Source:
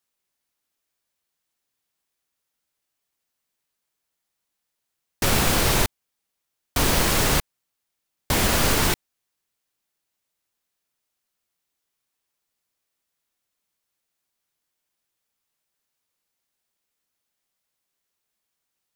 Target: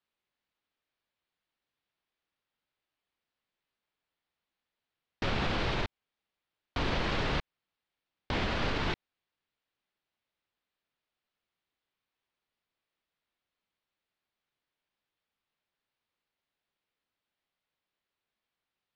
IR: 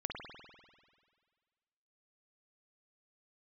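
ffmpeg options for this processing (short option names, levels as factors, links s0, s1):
-af "alimiter=limit=0.141:level=0:latency=1:release=110,lowpass=f=4000:w=0.5412,lowpass=f=4000:w=1.3066,volume=0.75"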